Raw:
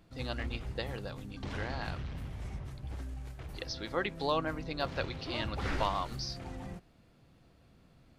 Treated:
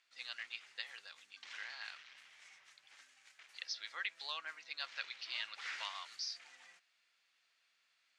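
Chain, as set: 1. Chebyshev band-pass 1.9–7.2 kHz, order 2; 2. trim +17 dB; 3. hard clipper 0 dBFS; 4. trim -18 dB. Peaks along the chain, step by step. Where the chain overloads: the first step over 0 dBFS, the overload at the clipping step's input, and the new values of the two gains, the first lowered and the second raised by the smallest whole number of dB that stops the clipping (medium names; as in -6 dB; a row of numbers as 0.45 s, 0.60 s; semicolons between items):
-22.5 dBFS, -5.5 dBFS, -5.5 dBFS, -23.5 dBFS; nothing clips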